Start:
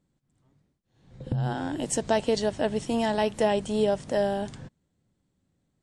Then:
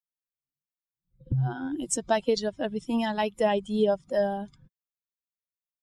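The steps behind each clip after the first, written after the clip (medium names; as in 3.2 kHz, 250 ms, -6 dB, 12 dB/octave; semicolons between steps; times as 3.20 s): expander on every frequency bin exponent 2; trim +3 dB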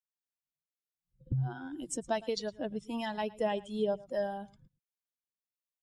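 harmonic tremolo 1.5 Hz, depth 50%, crossover 660 Hz; delay 111 ms -21 dB; trim -5 dB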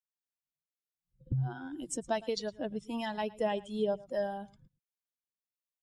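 no audible change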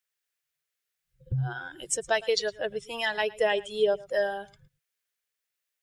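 FFT filter 150 Hz 0 dB, 280 Hz -20 dB, 400 Hz +6 dB, 950 Hz 0 dB, 1.7 kHz +12 dB, 4.2 kHz +7 dB; trim +3 dB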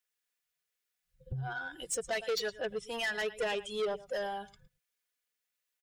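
comb 4.1 ms, depth 53%; saturation -26 dBFS, distortion -8 dB; trim -2.5 dB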